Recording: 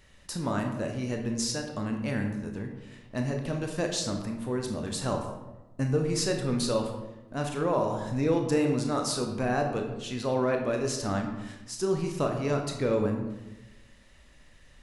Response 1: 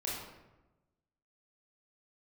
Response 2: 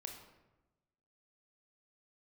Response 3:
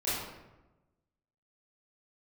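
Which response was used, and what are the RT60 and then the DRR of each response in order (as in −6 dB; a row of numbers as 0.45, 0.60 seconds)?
2; 1.1, 1.1, 1.1 seconds; −6.0, 2.5, −12.5 decibels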